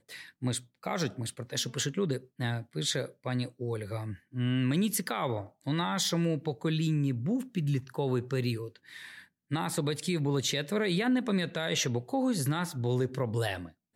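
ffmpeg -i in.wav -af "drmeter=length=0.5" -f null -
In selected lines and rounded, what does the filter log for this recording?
Channel 1: DR: 7.2
Overall DR: 7.2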